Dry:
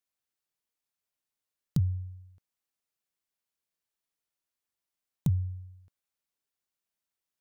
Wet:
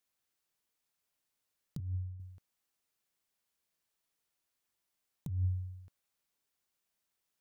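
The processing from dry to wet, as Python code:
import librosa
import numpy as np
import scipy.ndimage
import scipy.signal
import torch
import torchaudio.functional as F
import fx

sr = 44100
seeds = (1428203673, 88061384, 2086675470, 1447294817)

y = fx.over_compress(x, sr, threshold_db=-33.0, ratio=-1.0)
y = fx.ladder_lowpass(y, sr, hz=460.0, resonance_pct=20, at=(1.8, 2.2))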